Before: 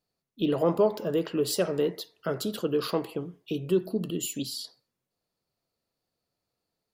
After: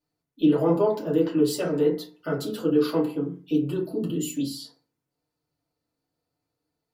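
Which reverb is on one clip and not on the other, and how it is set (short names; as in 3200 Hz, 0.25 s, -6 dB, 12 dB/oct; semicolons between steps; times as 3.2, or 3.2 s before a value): FDN reverb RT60 0.32 s, low-frequency decay 1.4×, high-frequency decay 0.5×, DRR -5.5 dB; gain -6 dB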